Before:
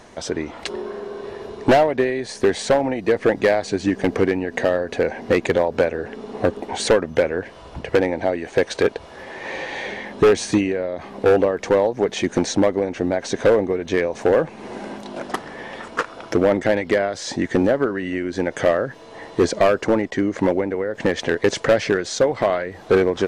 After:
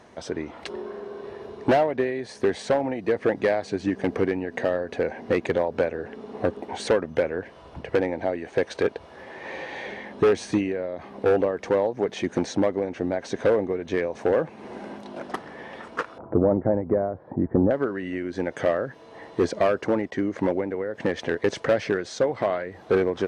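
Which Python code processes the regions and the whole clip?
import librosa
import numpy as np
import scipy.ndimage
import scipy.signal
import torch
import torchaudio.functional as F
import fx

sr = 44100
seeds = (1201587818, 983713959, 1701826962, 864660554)

y = fx.chain(x, sr, fx.lowpass(hz=1100.0, slope=24),
    fx.low_shelf(hz=160.0, db=11.5), at=(16.18, 17.71))
y = scipy.signal.sosfilt(scipy.signal.butter(2, 58.0, 'highpass', fs=sr, output='sos'), y)
y = fx.high_shelf(y, sr, hz=3600.0, db=-7.0)
y = fx.notch(y, sr, hz=7200.0, q=13.0)
y = F.gain(torch.from_numpy(y), -5.0).numpy()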